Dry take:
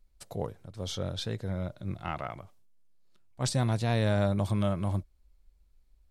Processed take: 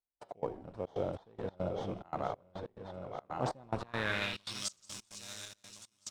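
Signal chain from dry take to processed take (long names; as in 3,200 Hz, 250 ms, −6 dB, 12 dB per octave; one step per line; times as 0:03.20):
feedback delay that plays each chunk backwards 682 ms, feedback 58%, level −5.5 dB
parametric band 660 Hz −10 dB 0.88 octaves
hum removal 188.3 Hz, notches 29
in parallel at −5 dB: sample-rate reduction 2,700 Hz, jitter 0%
on the sum: band-pass filter sweep 700 Hz → 6,600 Hz, 0:03.67–0:04.68
dynamic equaliser 1,600 Hz, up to −3 dB, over −52 dBFS, Q 0.9
on a send: echo with shifted repeats 81 ms, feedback 60%, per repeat −99 Hz, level −15.5 dB
on the sum: gate pattern "..x.xxxx.xx" 141 BPM −24 dB
level +10.5 dB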